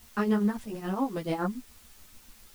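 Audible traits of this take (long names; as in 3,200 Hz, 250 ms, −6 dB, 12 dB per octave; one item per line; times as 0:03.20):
tremolo triangle 7.1 Hz, depth 85%
a quantiser's noise floor 10 bits, dither triangular
a shimmering, thickened sound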